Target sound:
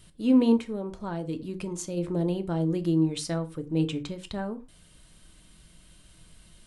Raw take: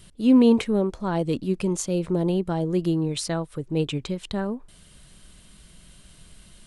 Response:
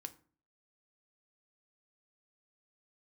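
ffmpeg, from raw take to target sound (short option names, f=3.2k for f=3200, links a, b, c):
-filter_complex "[1:a]atrim=start_sample=2205,afade=t=out:st=0.17:d=0.01,atrim=end_sample=7938[a];[0:a][a]afir=irnorm=-1:irlink=0,asplit=3[b][c][d];[b]afade=t=out:st=0.56:d=0.02[e];[c]acompressor=threshold=-31dB:ratio=2.5,afade=t=in:st=0.56:d=0.02,afade=t=out:st=1.96:d=0.02[f];[d]afade=t=in:st=1.96:d=0.02[g];[e][f][g]amix=inputs=3:normalize=0"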